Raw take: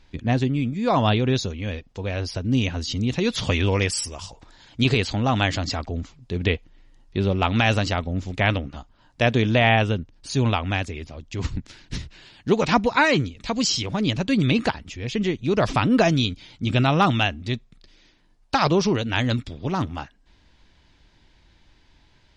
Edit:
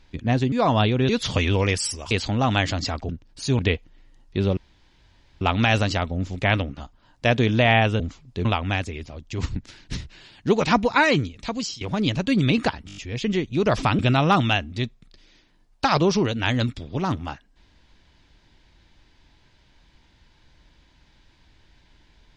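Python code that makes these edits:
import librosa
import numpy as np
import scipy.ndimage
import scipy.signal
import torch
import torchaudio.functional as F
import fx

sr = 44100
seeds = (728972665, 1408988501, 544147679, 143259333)

y = fx.edit(x, sr, fx.cut(start_s=0.52, length_s=0.28),
    fx.cut(start_s=1.37, length_s=1.85),
    fx.cut(start_s=4.24, length_s=0.72),
    fx.swap(start_s=5.94, length_s=0.45, other_s=9.96, other_length_s=0.5),
    fx.insert_room_tone(at_s=7.37, length_s=0.84),
    fx.fade_out_to(start_s=13.38, length_s=0.44, floor_db=-19.0),
    fx.stutter(start_s=14.88, slice_s=0.02, count=6),
    fx.cut(start_s=15.9, length_s=0.79), tone=tone)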